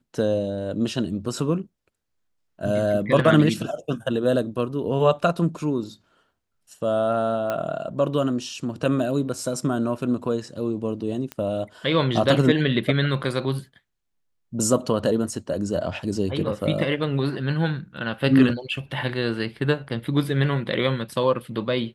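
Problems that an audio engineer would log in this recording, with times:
7.5 pop -13 dBFS
11.32 pop -17 dBFS

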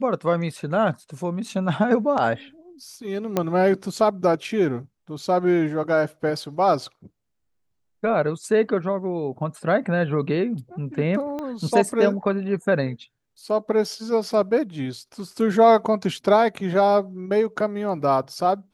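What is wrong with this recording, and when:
3.37 pop -8 dBFS
11.39 pop -19 dBFS

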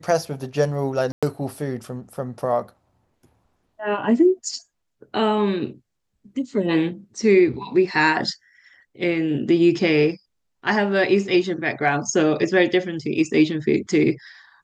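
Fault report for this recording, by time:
1.12–1.23 gap 0.106 s

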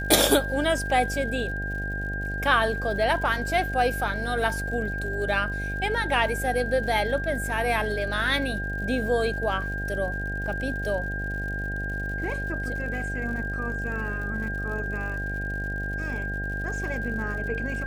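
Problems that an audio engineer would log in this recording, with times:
buzz 50 Hz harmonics 16 -32 dBFS
crackle 96/s -37 dBFS
tone 1600 Hz -31 dBFS

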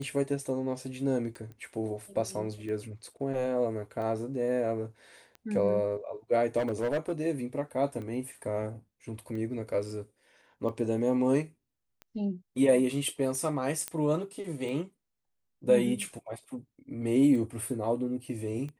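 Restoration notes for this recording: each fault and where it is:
tick 45 rpm -30 dBFS
1.52 pop -35 dBFS
6.58–7.2 clipped -25 dBFS
13.88 pop -16 dBFS

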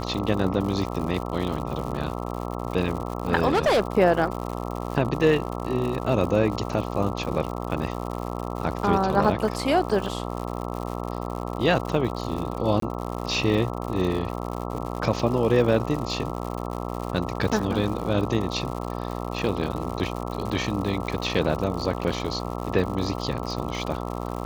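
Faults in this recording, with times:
buzz 60 Hz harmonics 22 -31 dBFS
crackle 140/s -31 dBFS
3.47–3.82 clipped -16.5 dBFS
12.8–12.82 gap 23 ms

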